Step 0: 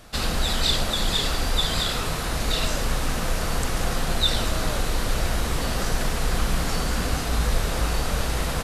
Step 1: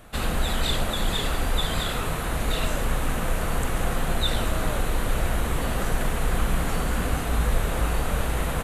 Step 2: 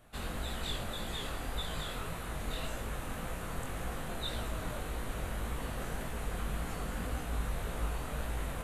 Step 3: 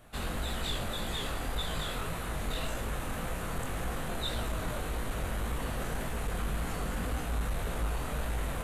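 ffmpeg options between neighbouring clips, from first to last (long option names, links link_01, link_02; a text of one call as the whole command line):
ffmpeg -i in.wav -af "equalizer=frequency=5100:width_type=o:width=0.75:gain=-13.5" out.wav
ffmpeg -i in.wav -af "flanger=delay=16.5:depth=7:speed=1.8,volume=-9dB" out.wav
ffmpeg -i in.wav -af "asoftclip=type=tanh:threshold=-28.5dB,volume=4.5dB" out.wav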